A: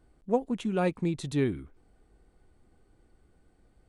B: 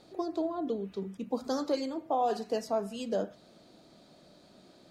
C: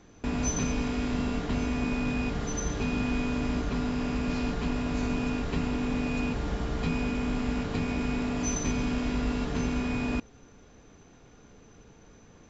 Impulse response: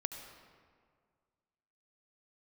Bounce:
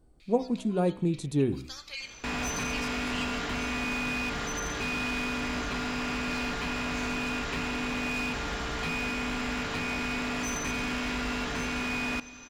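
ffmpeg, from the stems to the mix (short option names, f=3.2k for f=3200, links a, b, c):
-filter_complex "[0:a]equalizer=f=2.1k:t=o:w=1.6:g=-11,bandreject=f=63.59:t=h:w=4,bandreject=f=127.18:t=h:w=4,bandreject=f=190.77:t=h:w=4,bandreject=f=254.36:t=h:w=4,bandreject=f=317.95:t=h:w=4,bandreject=f=381.54:t=h:w=4,bandreject=f=445.13:t=h:w=4,bandreject=f=508.72:t=h:w=4,bandreject=f=572.31:t=h:w=4,bandreject=f=635.9:t=h:w=4,bandreject=f=699.49:t=h:w=4,bandreject=f=763.08:t=h:w=4,bandreject=f=826.67:t=h:w=4,bandreject=f=890.26:t=h:w=4,bandreject=f=953.85:t=h:w=4,bandreject=f=1.01744k:t=h:w=4,bandreject=f=1.08103k:t=h:w=4,bandreject=f=1.14462k:t=h:w=4,bandreject=f=1.20821k:t=h:w=4,bandreject=f=1.2718k:t=h:w=4,bandreject=f=1.33539k:t=h:w=4,bandreject=f=1.39898k:t=h:w=4,bandreject=f=1.46257k:t=h:w=4,bandreject=f=1.52616k:t=h:w=4,bandreject=f=1.58975k:t=h:w=4,bandreject=f=1.65334k:t=h:w=4,bandreject=f=1.71693k:t=h:w=4,bandreject=f=1.78052k:t=h:w=4,bandreject=f=1.84411k:t=h:w=4,bandreject=f=1.9077k:t=h:w=4,bandreject=f=1.97129k:t=h:w=4,bandreject=f=2.03488k:t=h:w=4,bandreject=f=2.09847k:t=h:w=4,bandreject=f=2.16206k:t=h:w=4,volume=2dB[a];[1:a]highpass=f=2.4k:t=q:w=6.7,adelay=200,volume=-4.5dB,asplit=2[b][c];[c]volume=-4dB[d];[2:a]acrossover=split=2600[e][f];[f]acompressor=threshold=-53dB:ratio=4:attack=1:release=60[g];[e][g]amix=inputs=2:normalize=0,tiltshelf=f=880:g=-10,asoftclip=type=hard:threshold=-32dB,adelay=2000,volume=1.5dB,asplit=2[h][i];[i]volume=-9.5dB[j];[3:a]atrim=start_sample=2205[k];[d][j]amix=inputs=2:normalize=0[l];[l][k]afir=irnorm=-1:irlink=0[m];[a][b][h][m]amix=inputs=4:normalize=0"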